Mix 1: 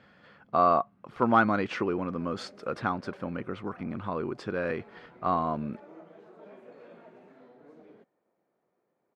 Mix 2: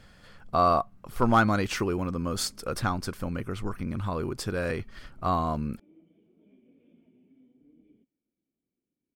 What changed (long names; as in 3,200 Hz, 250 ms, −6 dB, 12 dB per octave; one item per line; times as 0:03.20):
background: add formant resonators in series i
master: remove band-pass filter 180–2,600 Hz